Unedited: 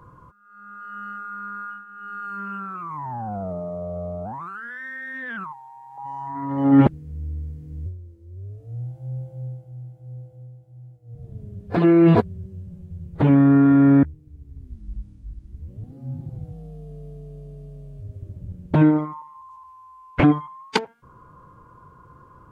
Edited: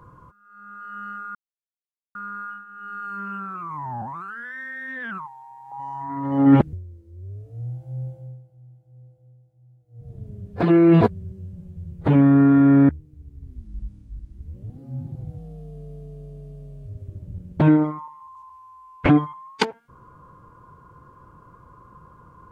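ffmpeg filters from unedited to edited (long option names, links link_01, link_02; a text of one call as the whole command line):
ffmpeg -i in.wav -filter_complex "[0:a]asplit=6[link_01][link_02][link_03][link_04][link_05][link_06];[link_01]atrim=end=1.35,asetpts=PTS-STARTPTS,afade=type=out:start_time=1.346:duration=0.004:curve=hsin,apad=pad_dur=0.8[link_07];[link_02]atrim=start=1.35:end=3.222,asetpts=PTS-STARTPTS,afade=type=in:duration=0.004:curve=hsin[link_08];[link_03]atrim=start=4.278:end=6.992[link_09];[link_04]atrim=start=7.868:end=9.53,asetpts=PTS-STARTPTS,afade=type=out:start_time=1.352:duration=0.31:silence=0.298538[link_10];[link_05]atrim=start=9.53:end=10.94,asetpts=PTS-STARTPTS,volume=-10.5dB[link_11];[link_06]atrim=start=10.94,asetpts=PTS-STARTPTS,afade=type=in:duration=0.31:silence=0.298538[link_12];[link_07][link_08]concat=n=2:v=0:a=1[link_13];[link_13][link_09]acrossfade=duration=0.004:curve1=hsin:curve2=hsin[link_14];[link_10][link_11][link_12]concat=n=3:v=0:a=1[link_15];[link_14][link_15]acrossfade=duration=0.004:curve1=hsin:curve2=hsin" out.wav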